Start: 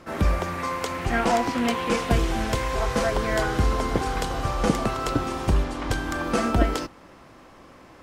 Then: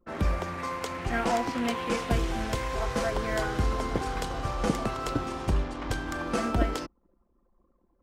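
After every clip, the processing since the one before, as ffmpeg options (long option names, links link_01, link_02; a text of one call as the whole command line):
ffmpeg -i in.wav -af "anlmdn=1,volume=-5dB" out.wav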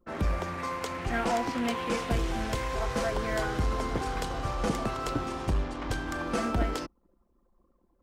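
ffmpeg -i in.wav -af "asoftclip=type=tanh:threshold=-19dB" out.wav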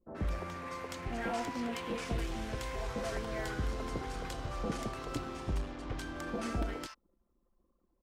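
ffmpeg -i in.wav -filter_complex "[0:a]acrossover=split=940[link_01][link_02];[link_02]adelay=80[link_03];[link_01][link_03]amix=inputs=2:normalize=0,volume=-6.5dB" out.wav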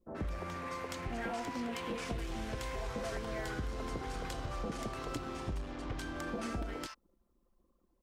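ffmpeg -i in.wav -af "acompressor=threshold=-36dB:ratio=6,volume=1.5dB" out.wav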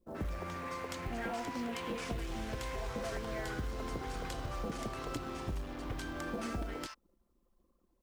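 ffmpeg -i in.wav -af "acrusher=bits=7:mode=log:mix=0:aa=0.000001" out.wav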